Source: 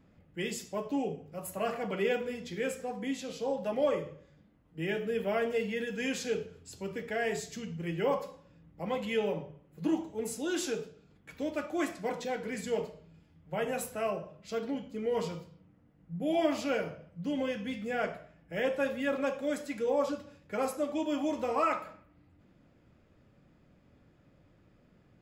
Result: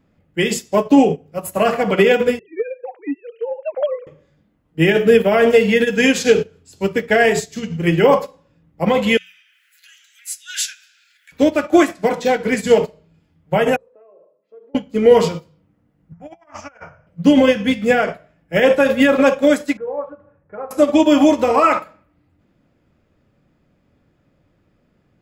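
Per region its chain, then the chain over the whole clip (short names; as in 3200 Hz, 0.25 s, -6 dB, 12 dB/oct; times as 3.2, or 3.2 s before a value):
2.39–4.07 sine-wave speech + dynamic EQ 1800 Hz, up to -4 dB, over -55 dBFS, Q 3 + compressor 4:1, threshold -37 dBFS
9.17–11.32 steep high-pass 1500 Hz 72 dB/oct + upward compressor, threshold -43 dBFS
13.76–14.75 compressor 12:1, threshold -36 dBFS + ladder band-pass 540 Hz, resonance 50% + notch comb 740 Hz
16.12–17.07 EQ curve 110 Hz 0 dB, 170 Hz -15 dB, 400 Hz -22 dB, 860 Hz -2 dB, 1500 Hz -1 dB, 2600 Hz -12 dB, 4000 Hz -29 dB, 5700 Hz -4 dB, 9400 Hz -26 dB + negative-ratio compressor -45 dBFS, ratio -0.5 + mismatched tape noise reduction encoder only
19.77–20.71 LPF 1500 Hz 24 dB/oct + bell 250 Hz -12.5 dB 0.49 oct + compressor 2:1, threshold -45 dBFS
whole clip: notches 60/120/180 Hz; maximiser +26 dB; upward expander 2.5:1, over -21 dBFS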